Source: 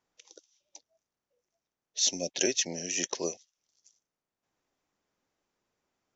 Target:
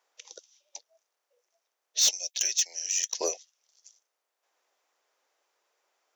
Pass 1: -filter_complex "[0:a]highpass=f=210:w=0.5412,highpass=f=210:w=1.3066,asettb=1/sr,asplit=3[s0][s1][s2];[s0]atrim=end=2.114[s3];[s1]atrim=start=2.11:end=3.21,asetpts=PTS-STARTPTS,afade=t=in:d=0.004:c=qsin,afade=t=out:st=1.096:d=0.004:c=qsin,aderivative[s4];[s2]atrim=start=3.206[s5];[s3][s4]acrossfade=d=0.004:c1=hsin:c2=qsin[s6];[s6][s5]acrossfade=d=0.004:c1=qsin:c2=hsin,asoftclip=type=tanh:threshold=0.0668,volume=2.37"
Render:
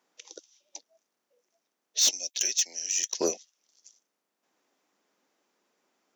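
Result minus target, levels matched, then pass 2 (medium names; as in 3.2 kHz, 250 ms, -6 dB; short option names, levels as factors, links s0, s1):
250 Hz band +10.5 dB
-filter_complex "[0:a]highpass=f=470:w=0.5412,highpass=f=470:w=1.3066,asettb=1/sr,asplit=3[s0][s1][s2];[s0]atrim=end=2.114[s3];[s1]atrim=start=2.11:end=3.21,asetpts=PTS-STARTPTS,afade=t=in:d=0.004:c=qsin,afade=t=out:st=1.096:d=0.004:c=qsin,aderivative[s4];[s2]atrim=start=3.206[s5];[s3][s4]acrossfade=d=0.004:c1=hsin:c2=qsin[s6];[s6][s5]acrossfade=d=0.004:c1=qsin:c2=hsin,asoftclip=type=tanh:threshold=0.0668,volume=2.37"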